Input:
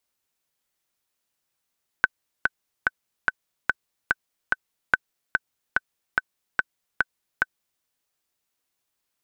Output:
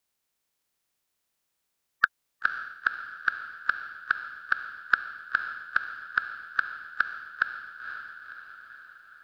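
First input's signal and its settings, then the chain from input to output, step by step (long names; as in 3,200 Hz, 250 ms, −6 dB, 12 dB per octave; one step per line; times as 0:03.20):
click track 145 BPM, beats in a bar 7, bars 2, 1,520 Hz, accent 3.5 dB −3 dBFS
spectral magnitudes quantised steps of 30 dB
on a send: feedback delay with all-pass diffusion 518 ms, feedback 55%, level −8.5 dB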